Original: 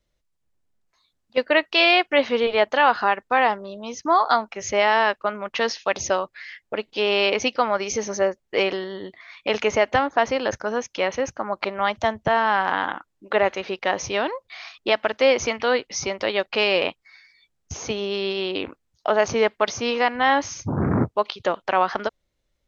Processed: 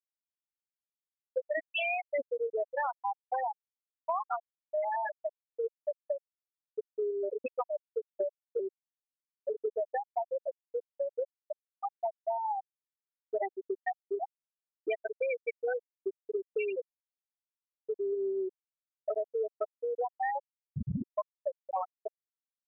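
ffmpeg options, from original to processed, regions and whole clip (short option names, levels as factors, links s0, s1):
-filter_complex "[0:a]asettb=1/sr,asplit=3[s0][s1][s2];[s0]atrim=end=13.424[s3];[s1]atrim=start=13.42:end=18.5,asetpts=PTS-STARTPTS,afade=t=in:d=0.004:c=qsin,afade=t=out:st=5.076:d=0.004:c=qsin,aemphasis=mode=production:type=cd,aecho=1:1:2.6:0.7,atrim=end_sample=224028[s4];[s2]atrim=start=18.496[s5];[s3][s4]acrossfade=d=0.004:c1=hsin:c2=qsin[s6];[s6][s5]acrossfade=d=0.004:c1=qsin:c2=hsin,bandreject=f=60:t=h:w=6,bandreject=f=120:t=h:w=6,bandreject=f=180:t=h:w=6,bandreject=f=240:t=h:w=6,bandreject=f=300:t=h:w=6,bandreject=f=360:t=h:w=6,afftfilt=real='re*gte(hypot(re,im),0.708)':imag='im*gte(hypot(re,im),0.708)':win_size=1024:overlap=0.75,acompressor=threshold=0.0282:ratio=5"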